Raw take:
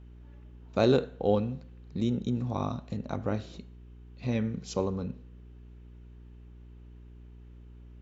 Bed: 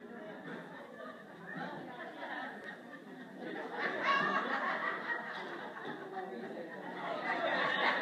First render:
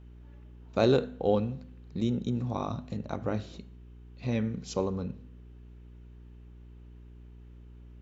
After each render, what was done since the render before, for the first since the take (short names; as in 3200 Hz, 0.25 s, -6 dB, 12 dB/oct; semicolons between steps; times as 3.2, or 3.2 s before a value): de-hum 50 Hz, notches 5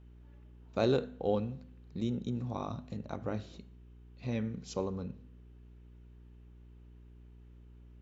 gain -5 dB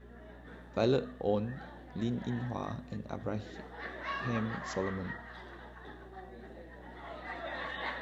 add bed -6.5 dB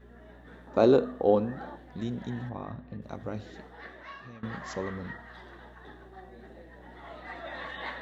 0.67–1.76 band shelf 550 Hz +8.5 dB 2.9 oct; 2.49–3.02 air absorption 350 m; 3.54–4.43 fade out, to -19.5 dB